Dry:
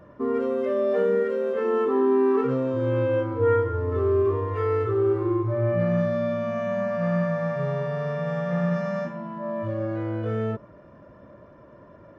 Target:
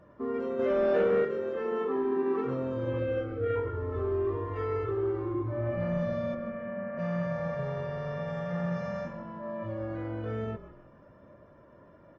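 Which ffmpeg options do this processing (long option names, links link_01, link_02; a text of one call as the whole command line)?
ffmpeg -i in.wav -filter_complex "[0:a]asettb=1/sr,asplit=3[link_01][link_02][link_03];[link_01]atrim=end=0.594[link_04];[link_02]atrim=start=0.59:end=1.25,asetpts=PTS-STARTPTS,afade=type=in:duration=0.004:curve=qsin,afade=type=out:start_time=0.656:duration=0.004:curve=qsin,acontrast=77[link_05];[link_03]atrim=start=1.246[link_06];[link_04][link_05]acrossfade=duration=0.004:curve1=hsin:curve2=qsin[link_07];[link_07][link_06]acrossfade=duration=0.004:curve1=qsin:curve2=hsin,asoftclip=type=tanh:threshold=-12.5dB,asplit=3[link_08][link_09][link_10];[link_08]afade=type=out:start_time=2.98:duration=0.02[link_11];[link_09]asuperstop=centerf=930:order=20:qfactor=3.2,afade=type=in:start_time=2.98:duration=0.02,afade=type=out:start_time=3.55:duration=0.02[link_12];[link_10]afade=type=in:start_time=3.55:duration=0.02[link_13];[link_11][link_12][link_13]amix=inputs=3:normalize=0,asettb=1/sr,asplit=3[link_14][link_15][link_16];[link_14]atrim=end=6.344[link_17];[link_15]atrim=start=6.34:end=6.99,asetpts=PTS-STARTPTS,afade=type=in:duration=0.004:curve=qsin,afade=type=out:start_time=0.646:duration=0.004:curve=qsin,highpass=190,equalizer=frequency=270:width_type=q:width=4:gain=7,equalizer=frequency=400:width_type=q:width=4:gain=6,equalizer=frequency=670:width_type=q:width=4:gain=-8,equalizer=frequency=1000:width_type=q:width=4:gain=-8,lowpass=frequency=2100:width=0.5412,lowpass=frequency=2100:width=1.3066[link_18];[link_16]atrim=start=6.986[link_19];[link_17][link_18]acrossfade=duration=0.004:curve1=hsin:curve2=qsin[link_20];[link_20][link_19]acrossfade=duration=0.004:curve1=qsin:curve2=hsin,asplit=4[link_21][link_22][link_23][link_24];[link_22]adelay=156,afreqshift=-45,volume=-15.5dB[link_25];[link_23]adelay=312,afreqshift=-90,volume=-23.7dB[link_26];[link_24]adelay=468,afreqshift=-135,volume=-31.9dB[link_27];[link_21][link_25][link_26][link_27]amix=inputs=4:normalize=0,volume=-7dB" -ar 48000 -c:a aac -b:a 24k out.aac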